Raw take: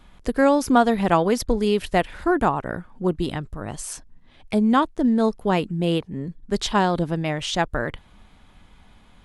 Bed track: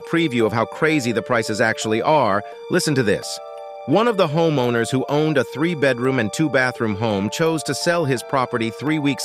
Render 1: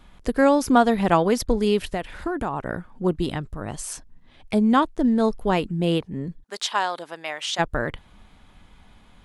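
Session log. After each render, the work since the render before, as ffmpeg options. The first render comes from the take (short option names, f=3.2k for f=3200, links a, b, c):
-filter_complex "[0:a]asettb=1/sr,asplit=3[a][b][c];[a]atrim=end=1.824[d];[b]atrim=start=1.82:end=2.64,asetpts=PTS-STARTPTS,afade=t=in:d=0.004:c=qsin,afade=t=out:st=0.816:d=0.004:c=qsin,acompressor=threshold=-22dB:ratio=5:attack=3.2:release=140:knee=1:detection=peak[e];[c]atrim=start=2.636[f];[d][e]acrossfade=d=0.004:c1=hsin:c2=qsin[g];[g][f]acrossfade=d=0.004:c1=qsin:c2=hsin,asettb=1/sr,asplit=3[h][i][j];[h]atrim=end=4.804[k];[i]atrim=start=4.8:end=5.66,asetpts=PTS-STARTPTS,afade=t=in:d=0.004:c=qsin,afade=t=out:st=0.856:d=0.004:c=qsin,asubboost=boost=10.5:cutoff=62[l];[j]atrim=start=5.656[m];[k][l]acrossfade=d=0.004:c1=hsin:c2=qsin[n];[n][m]acrossfade=d=0.004:c1=qsin:c2=hsin,asplit=3[o][p][q];[o]afade=t=out:st=6.42:d=0.02[r];[p]highpass=790,afade=t=in:st=6.42:d=0.02,afade=t=out:st=7.58:d=0.02[s];[q]afade=t=in:st=7.58:d=0.02[t];[r][s][t]amix=inputs=3:normalize=0"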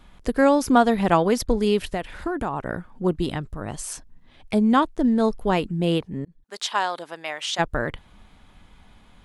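-filter_complex "[0:a]asplit=2[a][b];[a]atrim=end=6.25,asetpts=PTS-STARTPTS,afade=t=out:st=6.246:d=0.004:c=hsin[c];[b]atrim=start=6.25,asetpts=PTS-STARTPTS,afade=t=in:d=0.59:c=qsin[d];[c][d]concat=n=2:v=0:a=1"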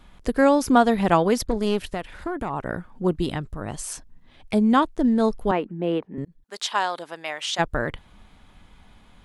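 -filter_complex "[0:a]asettb=1/sr,asplit=3[a][b][c];[a]atrim=end=1.474[d];[b]atrim=start=1.47:end=2.5,asetpts=PTS-STARTPTS,afade=t=in:d=0.004:c=qsin,afade=t=out:st=1.026:d=0.004:c=qsin,aeval=exprs='(tanh(5.62*val(0)+0.6)-tanh(0.6))/5.62':c=same[e];[c]atrim=start=2.496[f];[d][e]acrossfade=d=0.004:c1=hsin:c2=qsin[g];[g][f]acrossfade=d=0.004:c1=qsin:c2=hsin,asettb=1/sr,asplit=3[h][i][j];[h]atrim=end=5.514[k];[i]atrim=start=5.51:end=6.18,asetpts=PTS-STARTPTS,afade=t=in:d=0.004:c=qsin,afade=t=out:st=0.666:d=0.004:c=qsin,acrossover=split=200 2400:gain=0.0891 1 0.0891[l][m][n];[l][m][n]amix=inputs=3:normalize=0[o];[j]atrim=start=6.176[p];[k][o]acrossfade=d=0.004:c1=hsin:c2=qsin[q];[q][p]acrossfade=d=0.004:c1=qsin:c2=hsin"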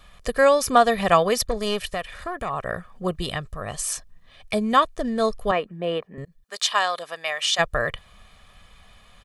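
-af "tiltshelf=f=740:g=-4.5,aecho=1:1:1.7:0.61"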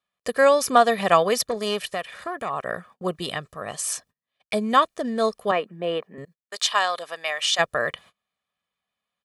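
-af "highpass=190,agate=range=-30dB:threshold=-47dB:ratio=16:detection=peak"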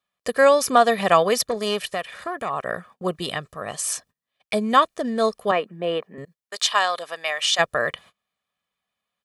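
-af "volume=1.5dB,alimiter=limit=-3dB:level=0:latency=1"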